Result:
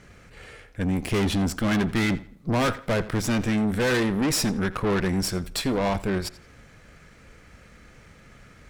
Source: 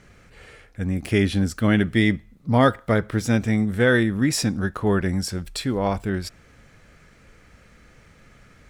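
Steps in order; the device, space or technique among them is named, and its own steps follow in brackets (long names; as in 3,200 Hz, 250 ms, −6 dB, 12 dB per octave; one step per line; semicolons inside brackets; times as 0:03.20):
rockabilly slapback (tube saturation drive 27 dB, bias 0.8; tape delay 85 ms, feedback 31%, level −16.5 dB, low-pass 5,900 Hz)
level +6.5 dB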